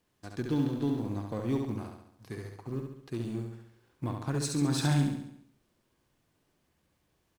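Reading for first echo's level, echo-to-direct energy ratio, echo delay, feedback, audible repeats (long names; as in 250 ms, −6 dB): −4.5 dB, −3.0 dB, 69 ms, 52%, 6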